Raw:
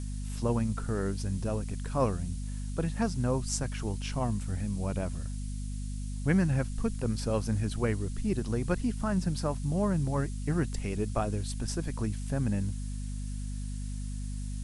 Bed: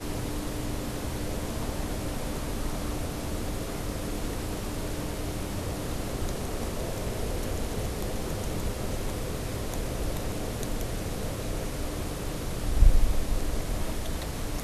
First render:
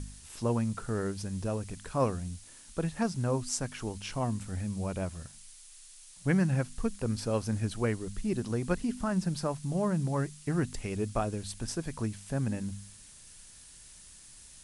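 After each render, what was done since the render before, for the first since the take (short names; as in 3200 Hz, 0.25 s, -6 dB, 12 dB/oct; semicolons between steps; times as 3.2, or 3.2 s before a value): de-hum 50 Hz, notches 5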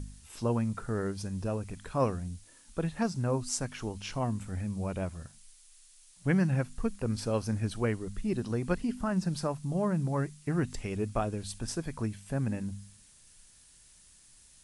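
noise print and reduce 6 dB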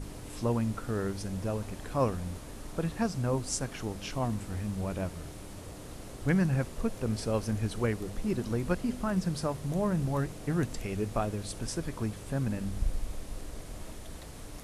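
add bed -12 dB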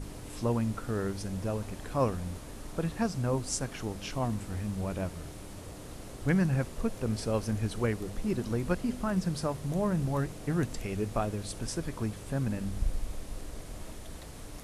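nothing audible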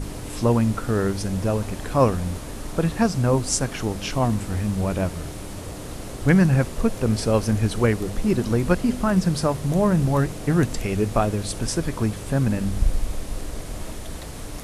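gain +10 dB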